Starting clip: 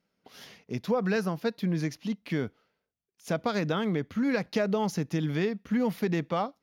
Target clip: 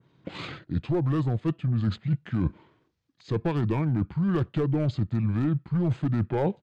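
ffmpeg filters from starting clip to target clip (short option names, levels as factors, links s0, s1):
-af "lowpass=f=8500:w=0.5412,lowpass=f=8500:w=1.3066,adynamicequalizer=threshold=0.00224:dfrequency=6100:dqfactor=0.76:tfrequency=6100:tqfactor=0.76:attack=5:release=100:ratio=0.375:range=3:mode=cutabove:tftype=bell,highpass=100,aeval=exprs='clip(val(0),-1,0.0708)':c=same,asetrate=31183,aresample=44100,atempo=1.41421,acontrast=73,lowshelf=f=360:g=8.5,areverse,acompressor=threshold=0.0447:ratio=12,areverse,volume=1.68"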